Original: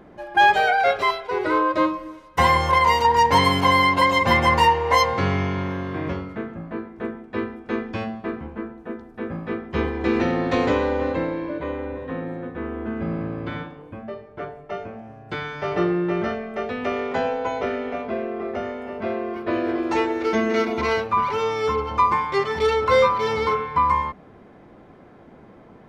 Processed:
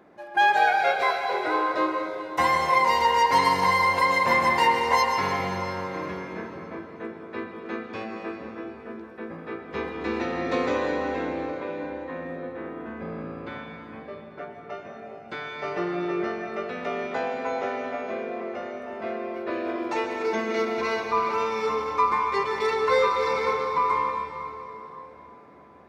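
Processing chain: HPF 380 Hz 6 dB/oct; notch 3100 Hz, Q 13; on a send: reverb RT60 3.5 s, pre-delay 0.115 s, DRR 3 dB; on the sum: gain -4 dB

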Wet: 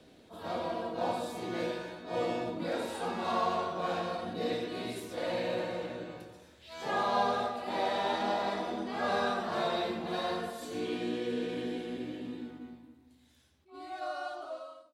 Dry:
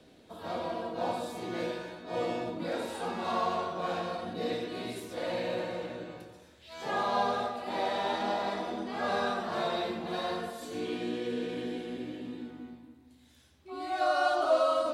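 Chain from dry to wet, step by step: ending faded out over 2.61 s; attack slew limiter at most 220 dB/s

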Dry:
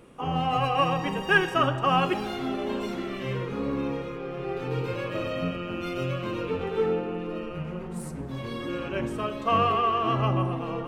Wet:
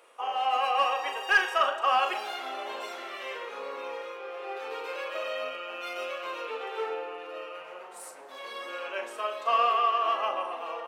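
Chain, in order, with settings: HPF 570 Hz 24 dB/oct; soft clip -14 dBFS, distortion -21 dB; doubler 38 ms -8 dB

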